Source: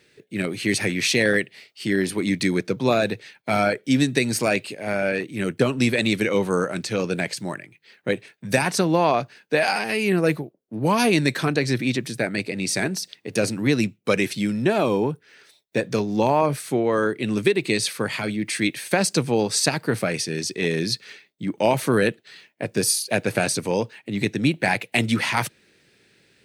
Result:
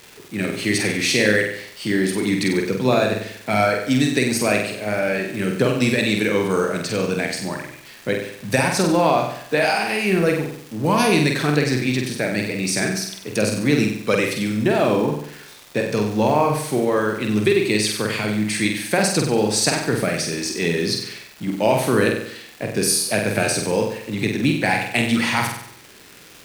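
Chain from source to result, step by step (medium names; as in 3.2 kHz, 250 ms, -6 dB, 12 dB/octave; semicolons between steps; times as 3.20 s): companding laws mixed up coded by mu; crackle 480 per s -32 dBFS; on a send: flutter echo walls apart 8.1 m, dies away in 0.67 s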